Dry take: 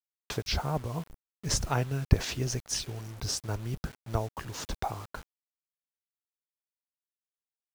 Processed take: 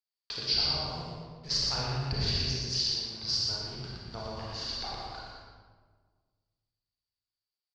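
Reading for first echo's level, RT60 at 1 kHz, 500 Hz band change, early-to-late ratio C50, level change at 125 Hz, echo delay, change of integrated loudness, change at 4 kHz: −3.5 dB, 1.4 s, −4.5 dB, −3.5 dB, −5.5 dB, 118 ms, +2.0 dB, +9.0 dB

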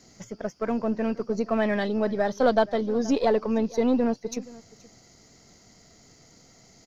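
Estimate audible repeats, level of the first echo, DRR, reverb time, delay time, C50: 1, −21.0 dB, no reverb audible, no reverb audible, 475 ms, no reverb audible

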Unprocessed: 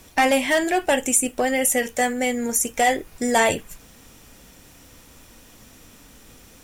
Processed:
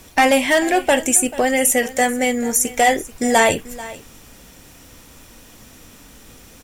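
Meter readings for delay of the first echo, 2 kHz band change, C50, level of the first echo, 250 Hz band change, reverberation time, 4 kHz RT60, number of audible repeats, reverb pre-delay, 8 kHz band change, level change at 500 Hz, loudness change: 438 ms, +4.0 dB, no reverb audible, −18.0 dB, +4.0 dB, no reverb audible, no reverb audible, 1, no reverb audible, +4.0 dB, +4.0 dB, +4.0 dB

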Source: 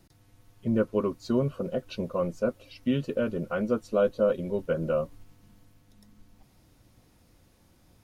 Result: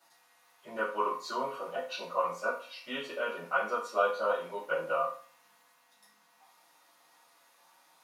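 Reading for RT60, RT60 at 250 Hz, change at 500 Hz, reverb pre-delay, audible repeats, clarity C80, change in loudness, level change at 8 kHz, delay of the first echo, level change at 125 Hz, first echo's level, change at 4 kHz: 0.45 s, 0.45 s, −6.0 dB, 4 ms, no echo audible, 11.5 dB, −4.5 dB, can't be measured, no echo audible, −25.0 dB, no echo audible, +3.0 dB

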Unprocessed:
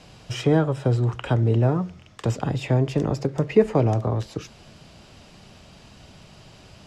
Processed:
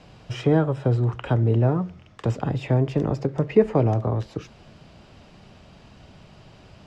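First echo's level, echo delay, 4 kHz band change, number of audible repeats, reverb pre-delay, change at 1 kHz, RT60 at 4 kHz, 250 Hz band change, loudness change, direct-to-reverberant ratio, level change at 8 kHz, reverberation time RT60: no echo audible, no echo audible, −4.5 dB, no echo audible, no reverb audible, −0.5 dB, no reverb audible, 0.0 dB, 0.0 dB, no reverb audible, can't be measured, no reverb audible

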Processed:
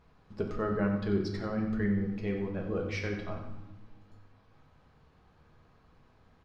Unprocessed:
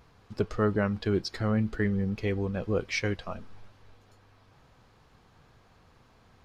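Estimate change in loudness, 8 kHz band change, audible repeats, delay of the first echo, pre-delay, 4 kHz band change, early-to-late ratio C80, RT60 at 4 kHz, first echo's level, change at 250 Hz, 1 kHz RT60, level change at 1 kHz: −3.0 dB, can't be measured, 1, 91 ms, 5 ms, −8.5 dB, 7.0 dB, 0.85 s, −11.0 dB, −1.5 dB, 0.95 s, −3.0 dB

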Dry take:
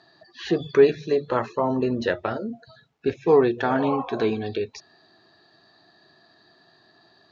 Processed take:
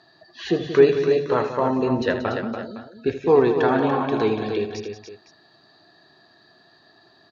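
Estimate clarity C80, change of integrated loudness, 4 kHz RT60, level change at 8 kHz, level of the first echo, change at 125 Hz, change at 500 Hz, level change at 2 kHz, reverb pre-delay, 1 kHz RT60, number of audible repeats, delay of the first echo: no reverb audible, +2.0 dB, no reverb audible, can't be measured, −11.5 dB, +3.0 dB, +2.0 dB, +2.5 dB, no reverb audible, no reverb audible, 4, 80 ms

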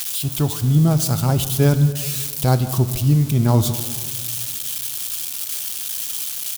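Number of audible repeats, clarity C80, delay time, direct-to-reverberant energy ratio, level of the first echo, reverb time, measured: 1, 12.5 dB, 151 ms, 10.0 dB, −20.5 dB, 1.8 s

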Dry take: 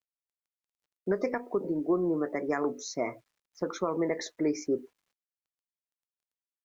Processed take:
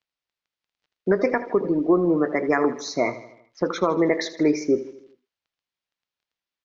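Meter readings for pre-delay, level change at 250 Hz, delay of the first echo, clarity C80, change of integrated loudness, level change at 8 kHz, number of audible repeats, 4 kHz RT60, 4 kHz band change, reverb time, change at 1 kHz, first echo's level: no reverb audible, +8.5 dB, 79 ms, no reverb audible, +8.5 dB, can't be measured, 4, no reverb audible, +9.5 dB, no reverb audible, +9.5 dB, −15.0 dB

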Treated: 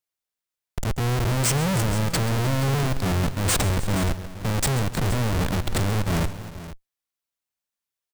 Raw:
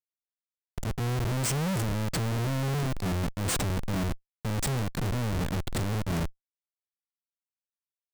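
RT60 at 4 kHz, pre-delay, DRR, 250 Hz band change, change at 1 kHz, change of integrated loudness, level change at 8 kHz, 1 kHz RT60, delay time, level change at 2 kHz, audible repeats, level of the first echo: no reverb audible, no reverb audible, no reverb audible, +5.0 dB, +7.0 dB, +6.0 dB, +7.5 dB, no reverb audible, 134 ms, +7.5 dB, 3, −16.5 dB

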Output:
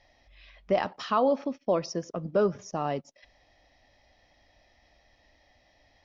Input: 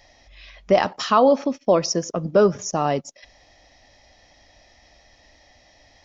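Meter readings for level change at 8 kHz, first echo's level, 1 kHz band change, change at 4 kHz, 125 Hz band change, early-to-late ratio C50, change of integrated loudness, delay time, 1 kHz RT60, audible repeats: can't be measured, no echo audible, −8.5 dB, −12.0 dB, −8.0 dB, no reverb audible, −8.5 dB, no echo audible, no reverb audible, no echo audible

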